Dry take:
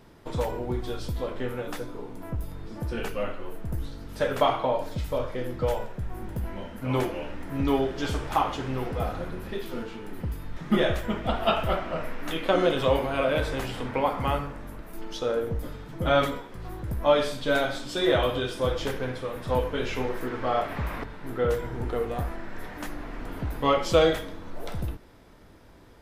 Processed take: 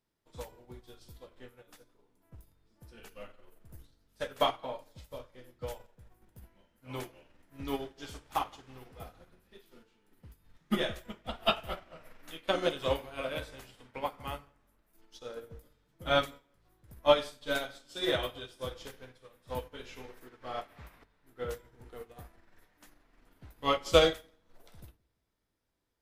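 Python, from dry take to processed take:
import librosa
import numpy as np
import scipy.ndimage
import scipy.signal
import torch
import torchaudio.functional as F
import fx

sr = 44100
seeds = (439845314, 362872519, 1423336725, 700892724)

y = fx.high_shelf(x, sr, hz=2600.0, db=11.5)
y = fx.echo_filtered(y, sr, ms=171, feedback_pct=38, hz=2600.0, wet_db=-15)
y = fx.upward_expand(y, sr, threshold_db=-35.0, expansion=2.5)
y = y * librosa.db_to_amplitude(-1.5)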